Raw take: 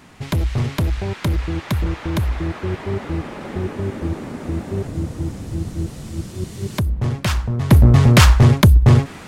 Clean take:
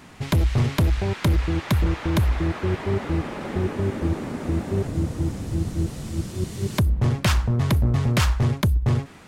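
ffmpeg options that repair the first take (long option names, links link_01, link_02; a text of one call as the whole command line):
ffmpeg -i in.wav -af "asetnsamples=nb_out_samples=441:pad=0,asendcmd='7.71 volume volume -10dB',volume=0dB" out.wav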